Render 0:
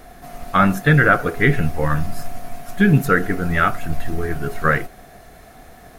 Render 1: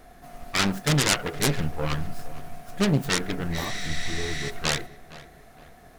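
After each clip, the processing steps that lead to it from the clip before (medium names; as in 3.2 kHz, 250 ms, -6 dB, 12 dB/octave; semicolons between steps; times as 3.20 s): self-modulated delay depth 0.88 ms; spectral replace 3.59–4.47 s, 1.2–11 kHz before; filtered feedback delay 465 ms, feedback 41%, low-pass 2.7 kHz, level -17.5 dB; trim -7.5 dB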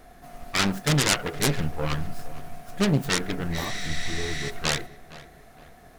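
no audible change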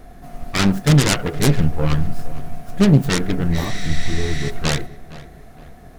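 bass shelf 400 Hz +10 dB; trim +2 dB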